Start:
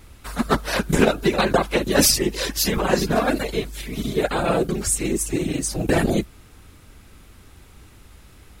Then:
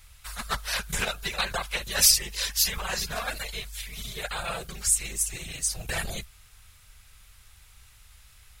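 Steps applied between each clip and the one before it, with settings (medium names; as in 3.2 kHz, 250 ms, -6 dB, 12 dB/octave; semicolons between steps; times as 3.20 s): amplifier tone stack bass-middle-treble 10-0-10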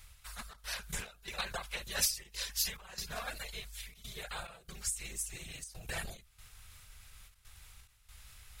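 reverse; upward compressor, threshold -36 dBFS; reverse; trance gate "xxxxx.xxxx..xxxx" 141 bpm -12 dB; endings held to a fixed fall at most 140 dB/s; trim -8.5 dB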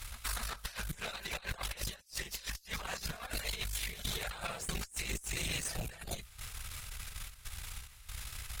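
pre-echo 250 ms -19.5 dB; compressor with a negative ratio -46 dBFS, ratio -0.5; Chebyshev shaper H 6 -18 dB, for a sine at -29.5 dBFS; trim +6 dB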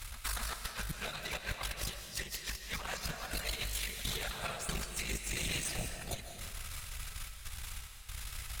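algorithmic reverb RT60 1.4 s, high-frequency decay 0.95×, pre-delay 110 ms, DRR 6 dB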